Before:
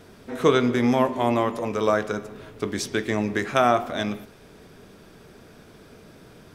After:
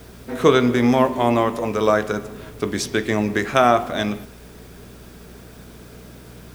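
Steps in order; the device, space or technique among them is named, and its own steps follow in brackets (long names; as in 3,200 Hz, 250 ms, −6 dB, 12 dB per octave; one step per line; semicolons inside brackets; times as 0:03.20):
video cassette with head-switching buzz (hum with harmonics 60 Hz, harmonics 4, −49 dBFS; white noise bed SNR 32 dB)
level +4 dB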